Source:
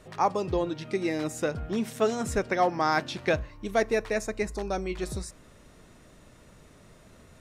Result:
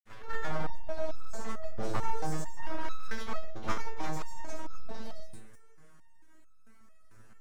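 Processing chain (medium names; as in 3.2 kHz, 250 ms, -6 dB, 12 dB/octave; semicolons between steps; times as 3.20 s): chunks repeated in reverse 108 ms, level -2 dB; whisper effect; FDN reverb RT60 0.31 s, low-frequency decay 1.5×, high-frequency decay 0.55×, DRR 3 dB; granulator; touch-sensitive phaser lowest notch 490 Hz, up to 2.4 kHz, full sweep at -24.5 dBFS; full-wave rectifier; peaking EQ 1.6 kHz +3 dB 0.71 oct; resonator arpeggio 4.5 Hz 110–1300 Hz; trim +5 dB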